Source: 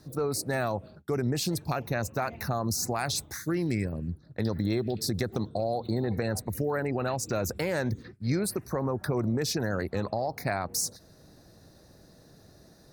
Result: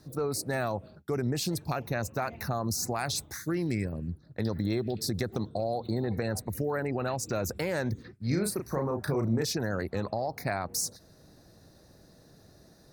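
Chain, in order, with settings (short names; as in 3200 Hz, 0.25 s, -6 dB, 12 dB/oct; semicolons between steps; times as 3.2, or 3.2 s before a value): 8.27–9.45 doubler 35 ms -5.5 dB; gain -1.5 dB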